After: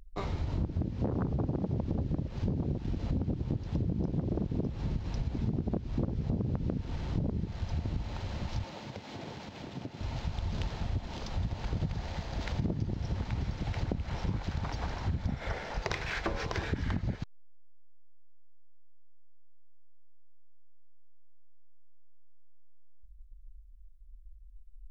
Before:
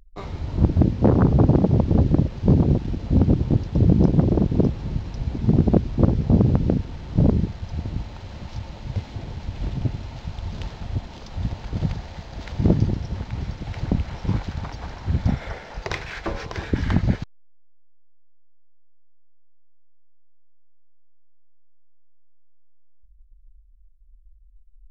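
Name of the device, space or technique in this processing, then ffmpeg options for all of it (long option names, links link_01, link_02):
serial compression, peaks first: -filter_complex "[0:a]acompressor=threshold=-24dB:ratio=4,acompressor=threshold=-30dB:ratio=2.5,asettb=1/sr,asplit=3[link_01][link_02][link_03];[link_01]atrim=end=8.644[link_04];[link_02]atrim=start=8.64:end=10.01,asetpts=PTS-STARTPTS,afade=type=in:duration=0.004:curve=qsin,afade=type=out:start_time=1.366:duration=0.004:curve=qsin,highpass=220[link_05];[link_03]atrim=start=10.006[link_06];[link_04][link_05]acrossfade=duration=0.004:curve1=hsin:curve2=qsin[link_07];[link_07][link_06]acrossfade=duration=0.004:curve1=qsin:curve2=hsin"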